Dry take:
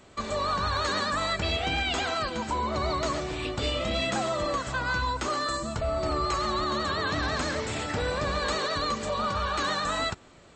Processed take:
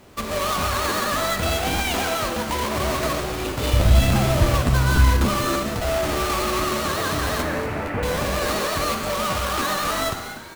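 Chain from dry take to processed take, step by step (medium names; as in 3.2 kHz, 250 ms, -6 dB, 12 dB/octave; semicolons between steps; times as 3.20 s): square wave that keeps the level; 3.73–5.46 s: resonant low shelf 160 Hz +13 dB, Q 1.5; 7.42–8.03 s: steep low-pass 2.5 kHz; frequency-shifting echo 239 ms, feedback 47%, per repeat +140 Hz, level -13 dB; Schroeder reverb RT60 1.3 s, combs from 26 ms, DRR 7 dB; crackling interface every 0.29 s, samples 512, repeat, from 0.31 s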